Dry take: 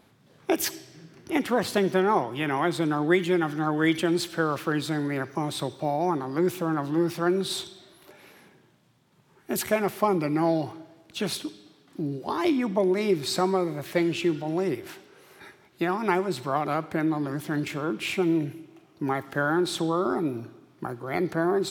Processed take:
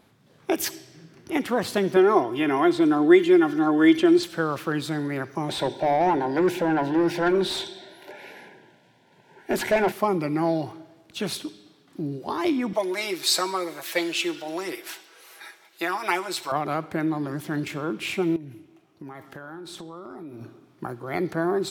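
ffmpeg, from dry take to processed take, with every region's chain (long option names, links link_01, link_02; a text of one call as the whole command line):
ffmpeg -i in.wav -filter_complex "[0:a]asettb=1/sr,asplit=3[link_01][link_02][link_03];[link_01]atrim=end=1.964[link_04];[link_02]atrim=start=1.96:end=4.23,asetpts=PTS-STARTPTS,afade=type=in:duration=0.004:curve=qsin,afade=type=out:start_time=2.266:duration=0.004:curve=qsin,acrossover=split=6800[link_05][link_06];[link_06]acompressor=threshold=-53dB:ratio=4:attack=1:release=60[link_07];[link_05][link_07]amix=inputs=2:normalize=0,equalizer=frequency=350:width_type=o:width=1.2:gain=4,aecho=1:1:2.9:0.61,atrim=end_sample=100107[link_08];[link_03]atrim=start=4.226[link_09];[link_04][link_08]acrossfade=duration=0.004:curve1=hsin:curve2=qsin[link_10];[link_10][link_09]acrossfade=duration=0.004:curve1=qsin:curve2=hsin,asettb=1/sr,asplit=3[link_11][link_12][link_13];[link_11]atrim=end=5.494[link_14];[link_12]atrim=start=5.49:end=9.92,asetpts=PTS-STARTPTS,afade=type=in:duration=0.004:curve=qsin,afade=type=out:start_time=4.426:duration=0.004:curve=qsin,asuperstop=centerf=1200:order=12:qfactor=3.4,bandreject=frequency=50:width_type=h:width=6,bandreject=frequency=100:width_type=h:width=6,bandreject=frequency=150:width_type=h:width=6,bandreject=frequency=200:width_type=h:width=6,bandreject=frequency=250:width_type=h:width=6,bandreject=frequency=300:width_type=h:width=6,bandreject=frequency=350:width_type=h:width=6,asplit=2[link_15][link_16];[link_16]highpass=frequency=720:poles=1,volume=20dB,asoftclip=type=tanh:threshold=-11.5dB[link_17];[link_15][link_17]amix=inputs=2:normalize=0,lowpass=frequency=1500:poles=1,volume=-6dB[link_18];[link_13]atrim=start=9.916[link_19];[link_14][link_18]acrossfade=duration=0.004:curve1=hsin:curve2=qsin[link_20];[link_20][link_19]acrossfade=duration=0.004:curve1=qsin:curve2=hsin,asettb=1/sr,asplit=3[link_21][link_22][link_23];[link_21]atrim=end=12.734[link_24];[link_22]atrim=start=12.73:end=16.52,asetpts=PTS-STARTPTS,afade=type=in:duration=0.004:curve=qsin,afade=type=out:start_time=3.786:duration=0.004:curve=qsin,highpass=520,highshelf=frequency=2200:gain=8,aecho=1:1:6.1:0.64,atrim=end_sample=167139[link_25];[link_23]atrim=start=16.516[link_26];[link_24][link_25]acrossfade=duration=0.004:curve1=hsin:curve2=qsin[link_27];[link_27][link_26]acrossfade=duration=0.004:curve1=qsin:curve2=hsin,asettb=1/sr,asplit=3[link_28][link_29][link_30];[link_28]atrim=end=18.364[link_31];[link_29]atrim=start=18.36:end=20.41,asetpts=PTS-STARTPTS,afade=type=in:duration=0.004:curve=qsin,afade=type=out:start_time=2.046:duration=0.004:curve=qsin,flanger=delay=6.2:depth=6.3:regen=79:speed=1.2:shape=sinusoidal,acompressor=threshold=-35dB:ratio=12:attack=3.2:release=140:knee=1:detection=peak[link_32];[link_30]atrim=start=20.406[link_33];[link_31][link_32]acrossfade=duration=0.004:curve1=hsin:curve2=qsin[link_34];[link_34][link_33]acrossfade=duration=0.004:curve1=qsin:curve2=hsin" out.wav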